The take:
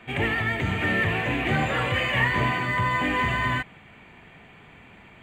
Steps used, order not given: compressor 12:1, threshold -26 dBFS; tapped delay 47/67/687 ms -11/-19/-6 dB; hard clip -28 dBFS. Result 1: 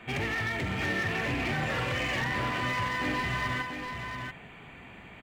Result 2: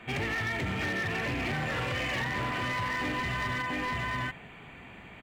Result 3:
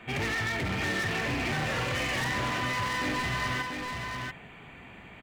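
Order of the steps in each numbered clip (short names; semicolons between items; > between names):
compressor > hard clip > tapped delay; tapped delay > compressor > hard clip; hard clip > tapped delay > compressor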